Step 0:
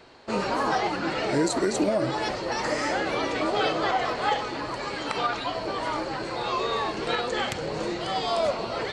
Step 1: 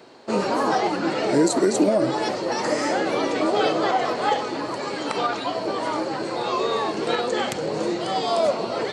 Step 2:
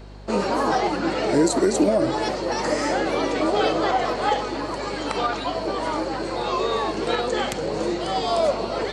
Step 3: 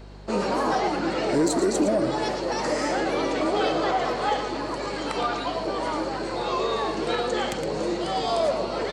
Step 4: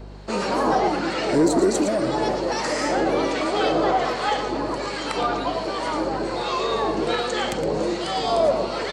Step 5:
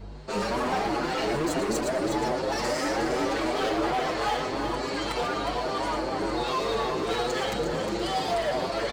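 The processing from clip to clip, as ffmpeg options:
ffmpeg -i in.wav -af "highpass=190,equalizer=frequency=2200:width=0.39:gain=-7.5,volume=7.5dB" out.wav
ffmpeg -i in.wav -af "aeval=exprs='val(0)+0.01*(sin(2*PI*50*n/s)+sin(2*PI*2*50*n/s)/2+sin(2*PI*3*50*n/s)/3+sin(2*PI*4*50*n/s)/4+sin(2*PI*5*50*n/s)/5)':channel_layout=same" out.wav
ffmpeg -i in.wav -filter_complex "[0:a]asplit=2[link_01][link_02];[link_02]aecho=0:1:114:0.335[link_03];[link_01][link_03]amix=inputs=2:normalize=0,asoftclip=type=tanh:threshold=-8.5dB,acontrast=82,volume=-9dB" out.wav
ffmpeg -i in.wav -filter_complex "[0:a]acrossover=split=1100[link_01][link_02];[link_01]aeval=exprs='val(0)*(1-0.5/2+0.5/2*cos(2*PI*1.3*n/s))':channel_layout=same[link_03];[link_02]aeval=exprs='val(0)*(1-0.5/2-0.5/2*cos(2*PI*1.3*n/s))':channel_layout=same[link_04];[link_03][link_04]amix=inputs=2:normalize=0,volume=5dB" out.wav
ffmpeg -i in.wav -filter_complex "[0:a]asoftclip=type=hard:threshold=-22dB,asplit=2[link_01][link_02];[link_02]aecho=0:1:359:0.447[link_03];[link_01][link_03]amix=inputs=2:normalize=0,asplit=2[link_04][link_05];[link_05]adelay=7,afreqshift=2.4[link_06];[link_04][link_06]amix=inputs=2:normalize=1" out.wav

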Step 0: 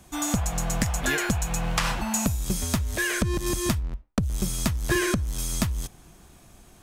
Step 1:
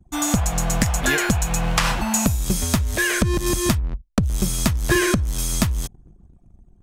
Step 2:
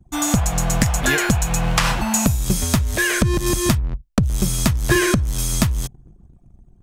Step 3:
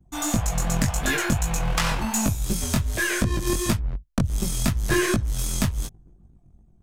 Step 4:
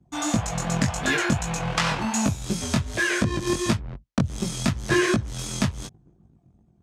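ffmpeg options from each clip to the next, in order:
ffmpeg -i in.wav -af "anlmdn=0.0251,volume=5.5dB" out.wav
ffmpeg -i in.wav -af "equalizer=frequency=130:width=5.4:gain=5,volume=1.5dB" out.wav
ffmpeg -i in.wav -af "aeval=exprs='0.473*(cos(1*acos(clip(val(0)/0.473,-1,1)))-cos(1*PI/2))+0.106*(cos(2*acos(clip(val(0)/0.473,-1,1)))-cos(2*PI/2))':channel_layout=same,flanger=delay=18:depth=4.6:speed=2.7,volume=-2.5dB" out.wav
ffmpeg -i in.wav -af "highpass=100,lowpass=6500,volume=1.5dB" out.wav

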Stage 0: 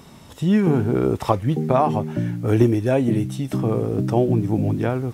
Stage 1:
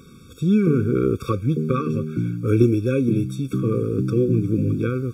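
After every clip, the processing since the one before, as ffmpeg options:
ffmpeg -i in.wav -af "afftfilt=real='re*eq(mod(floor(b*sr/1024/540),2),0)':imag='im*eq(mod(floor(b*sr/1024/540),2),0)':win_size=1024:overlap=0.75" out.wav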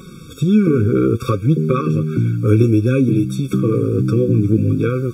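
ffmpeg -i in.wav -filter_complex "[0:a]flanger=delay=5.4:depth=4.5:regen=38:speed=0.58:shape=sinusoidal,asplit=2[link_01][link_02];[link_02]acompressor=threshold=-29dB:ratio=6,volume=3dB[link_03];[link_01][link_03]amix=inputs=2:normalize=0,volume=5dB" out.wav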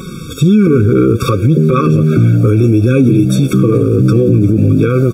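ffmpeg -i in.wav -filter_complex "[0:a]asplit=5[link_01][link_02][link_03][link_04][link_05];[link_02]adelay=421,afreqshift=66,volume=-23dB[link_06];[link_03]adelay=842,afreqshift=132,volume=-27.7dB[link_07];[link_04]adelay=1263,afreqshift=198,volume=-32.5dB[link_08];[link_05]adelay=1684,afreqshift=264,volume=-37.2dB[link_09];[link_01][link_06][link_07][link_08][link_09]amix=inputs=5:normalize=0,alimiter=level_in=12dB:limit=-1dB:release=50:level=0:latency=1,volume=-1dB" out.wav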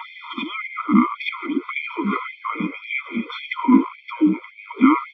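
ffmpeg -i in.wav -af "highpass=frequency=170:width_type=q:width=0.5412,highpass=frequency=170:width_type=q:width=1.307,lowpass=frequency=3000:width_type=q:width=0.5176,lowpass=frequency=3000:width_type=q:width=0.7071,lowpass=frequency=3000:width_type=q:width=1.932,afreqshift=-190,lowshelf=frequency=200:gain=-4,afftfilt=real='re*gte(b*sr/1024,200*pow(2100/200,0.5+0.5*sin(2*PI*1.8*pts/sr)))':imag='im*gte(b*sr/1024,200*pow(2100/200,0.5+0.5*sin(2*PI*1.8*pts/sr)))':win_size=1024:overlap=0.75,volume=5dB" out.wav

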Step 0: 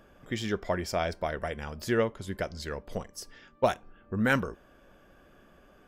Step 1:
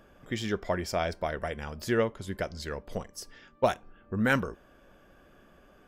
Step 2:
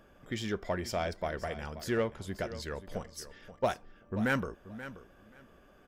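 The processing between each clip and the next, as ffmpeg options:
ffmpeg -i in.wav -af anull out.wav
ffmpeg -i in.wav -filter_complex "[0:a]asplit=2[link_01][link_02];[link_02]asoftclip=type=tanh:threshold=-26dB,volume=-3dB[link_03];[link_01][link_03]amix=inputs=2:normalize=0,aecho=1:1:531|1062:0.2|0.0359,volume=-7dB" out.wav

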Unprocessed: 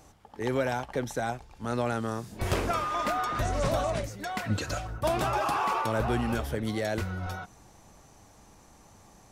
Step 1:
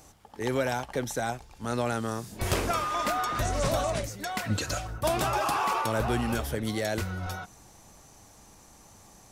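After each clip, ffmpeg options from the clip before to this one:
ffmpeg -i in.wav -af "highshelf=frequency=4100:gain=7.5" out.wav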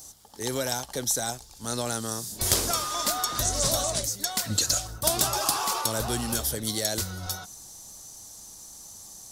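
ffmpeg -i in.wav -af "aexciter=amount=8.5:drive=3.7:freq=3600,aeval=exprs='1.5*(cos(1*acos(clip(val(0)/1.5,-1,1)))-cos(1*PI/2))+0.422*(cos(4*acos(clip(val(0)/1.5,-1,1)))-cos(4*PI/2))+0.211*(cos(6*acos(clip(val(0)/1.5,-1,1)))-cos(6*PI/2))':channel_layout=same,highshelf=frequency=4800:gain=-5.5,volume=-2.5dB" out.wav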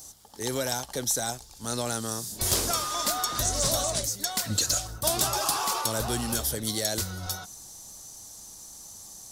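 ffmpeg -i in.wav -af "asoftclip=type=tanh:threshold=-13.5dB" out.wav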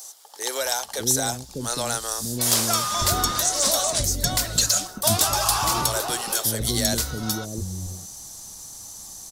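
ffmpeg -i in.wav -filter_complex "[0:a]acrossover=split=430[link_01][link_02];[link_01]adelay=600[link_03];[link_03][link_02]amix=inputs=2:normalize=0,volume=5.5dB" out.wav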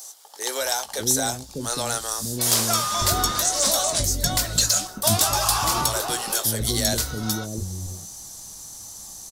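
ffmpeg -i in.wav -filter_complex "[0:a]asplit=2[link_01][link_02];[link_02]adelay=19,volume=-11dB[link_03];[link_01][link_03]amix=inputs=2:normalize=0" out.wav

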